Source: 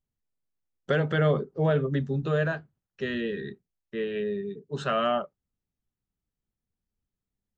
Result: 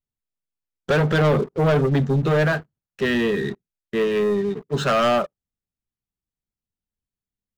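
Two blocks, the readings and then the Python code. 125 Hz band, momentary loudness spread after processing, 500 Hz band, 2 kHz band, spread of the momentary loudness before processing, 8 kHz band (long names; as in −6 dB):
+7.0 dB, 10 LU, +7.0 dB, +7.5 dB, 12 LU, can't be measured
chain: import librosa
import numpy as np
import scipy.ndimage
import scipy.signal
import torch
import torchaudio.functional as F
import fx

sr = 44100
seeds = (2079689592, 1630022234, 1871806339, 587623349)

y = fx.leveller(x, sr, passes=3)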